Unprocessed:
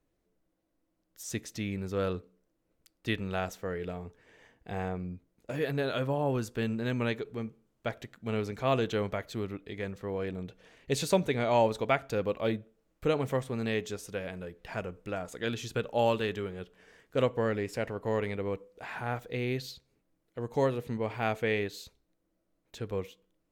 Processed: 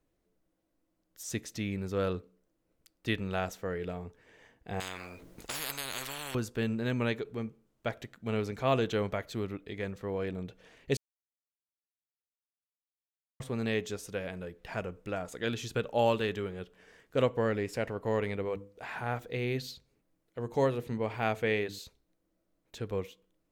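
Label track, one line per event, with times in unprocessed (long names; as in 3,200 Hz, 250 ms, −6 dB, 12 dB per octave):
4.800000	6.350000	every bin compressed towards the loudest bin 10 to 1
10.970000	13.400000	silence
18.430000	21.790000	mains-hum notches 50/100/150/200/250/300/350 Hz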